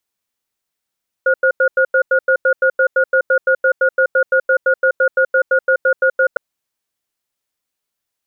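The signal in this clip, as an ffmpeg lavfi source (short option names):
-f lavfi -i "aevalsrc='0.237*(sin(2*PI*526*t)+sin(2*PI*1440*t))*clip(min(mod(t,0.17),0.08-mod(t,0.17))/0.005,0,1)':d=5.11:s=44100"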